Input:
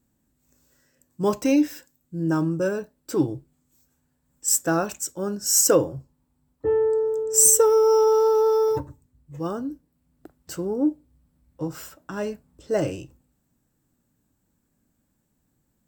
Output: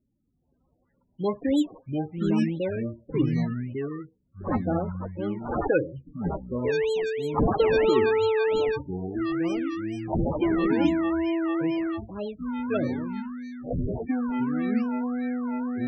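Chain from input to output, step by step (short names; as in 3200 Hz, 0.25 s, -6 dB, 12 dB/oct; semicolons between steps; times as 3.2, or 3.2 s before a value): decimation with a swept rate 17×, swing 60% 3 Hz; loudest bins only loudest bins 16; echoes that change speed 0.279 s, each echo -5 st, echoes 2; gain -4 dB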